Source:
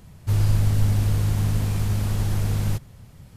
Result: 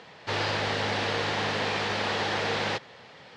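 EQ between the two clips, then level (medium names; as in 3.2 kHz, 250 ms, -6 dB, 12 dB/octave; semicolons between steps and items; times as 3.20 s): cabinet simulation 460–4100 Hz, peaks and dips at 480 Hz +6 dB, 830 Hz +4 dB, 1.8 kHz +5 dB; treble shelf 3.1 kHz +9 dB; +7.5 dB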